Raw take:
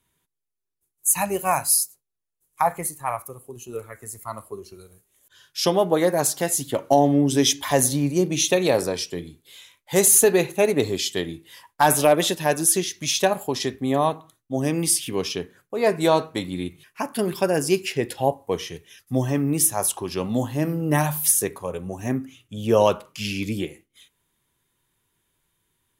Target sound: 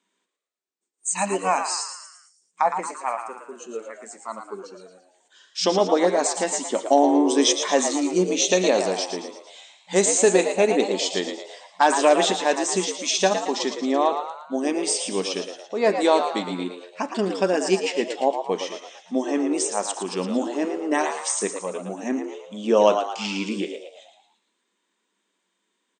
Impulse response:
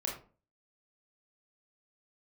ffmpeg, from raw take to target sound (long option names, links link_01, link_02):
-filter_complex "[0:a]afftfilt=real='re*between(b*sr/4096,180,8800)':imag='im*between(b*sr/4096,180,8800)':win_size=4096:overlap=0.75,asplit=7[link_01][link_02][link_03][link_04][link_05][link_06][link_07];[link_02]adelay=113,afreqshift=87,volume=-8dB[link_08];[link_03]adelay=226,afreqshift=174,volume=-14.4dB[link_09];[link_04]adelay=339,afreqshift=261,volume=-20.8dB[link_10];[link_05]adelay=452,afreqshift=348,volume=-27.1dB[link_11];[link_06]adelay=565,afreqshift=435,volume=-33.5dB[link_12];[link_07]adelay=678,afreqshift=522,volume=-39.9dB[link_13];[link_01][link_08][link_09][link_10][link_11][link_12][link_13]amix=inputs=7:normalize=0"